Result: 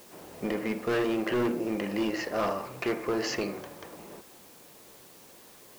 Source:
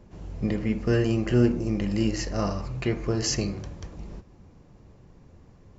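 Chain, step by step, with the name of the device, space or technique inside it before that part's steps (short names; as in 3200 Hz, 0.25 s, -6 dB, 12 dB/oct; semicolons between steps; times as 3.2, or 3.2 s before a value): aircraft radio (BPF 400–2700 Hz; hard clip -28.5 dBFS, distortion -8 dB; white noise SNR 22 dB); gain +5 dB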